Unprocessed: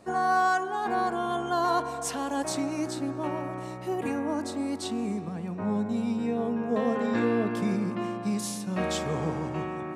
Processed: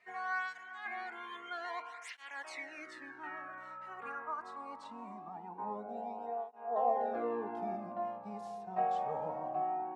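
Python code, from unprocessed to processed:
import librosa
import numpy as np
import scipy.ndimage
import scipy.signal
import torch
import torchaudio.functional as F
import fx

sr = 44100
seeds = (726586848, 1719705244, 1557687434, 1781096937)

y = fx.filter_sweep_bandpass(x, sr, from_hz=2100.0, to_hz=750.0, start_s=2.43, end_s=6.01, q=6.8)
y = fx.flanger_cancel(y, sr, hz=0.23, depth_ms=3.6)
y = y * librosa.db_to_amplitude(9.0)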